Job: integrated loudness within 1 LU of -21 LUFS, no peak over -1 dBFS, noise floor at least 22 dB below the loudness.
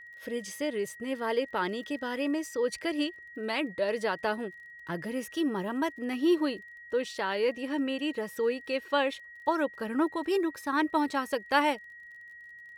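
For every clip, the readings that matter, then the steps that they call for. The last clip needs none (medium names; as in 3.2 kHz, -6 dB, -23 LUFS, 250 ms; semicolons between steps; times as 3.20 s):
tick rate 27 per s; steady tone 1.9 kHz; tone level -46 dBFS; loudness -31.0 LUFS; peak level -11.5 dBFS; loudness target -21.0 LUFS
-> de-click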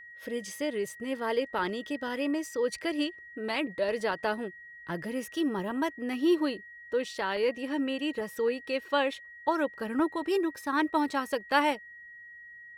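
tick rate 0.55 per s; steady tone 1.9 kHz; tone level -46 dBFS
-> band-stop 1.9 kHz, Q 30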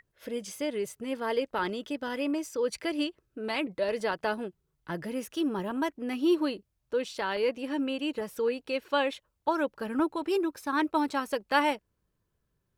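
steady tone not found; loudness -31.0 LUFS; peak level -11.5 dBFS; loudness target -21.0 LUFS
-> trim +10 dB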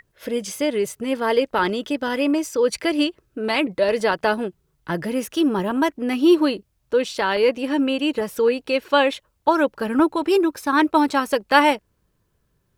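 loudness -21.0 LUFS; peak level -1.5 dBFS; noise floor -69 dBFS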